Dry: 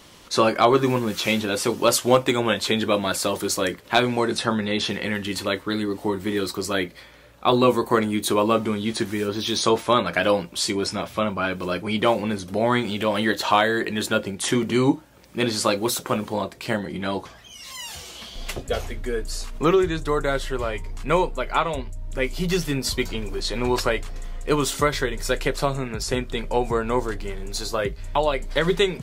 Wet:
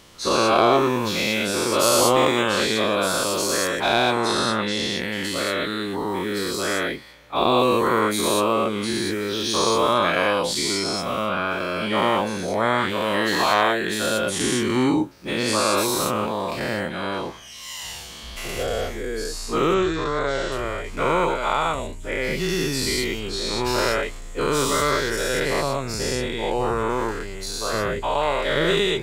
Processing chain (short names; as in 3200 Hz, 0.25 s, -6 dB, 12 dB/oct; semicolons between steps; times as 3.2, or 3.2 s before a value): spectral dilation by 0.24 s; 19.74–20.52 steep low-pass 7600 Hz 36 dB/oct; gain -6.5 dB